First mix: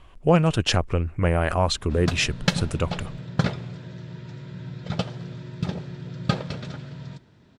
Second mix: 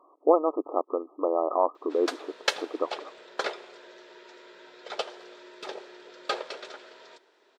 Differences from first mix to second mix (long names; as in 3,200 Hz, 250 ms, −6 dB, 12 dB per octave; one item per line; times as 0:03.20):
speech: add linear-phase brick-wall band-pass 270–1,300 Hz
background: add elliptic high-pass filter 380 Hz, stop band 80 dB